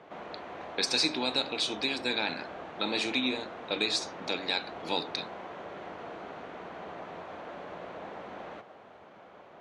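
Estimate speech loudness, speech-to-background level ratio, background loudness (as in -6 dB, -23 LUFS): -30.5 LUFS, 12.5 dB, -43.0 LUFS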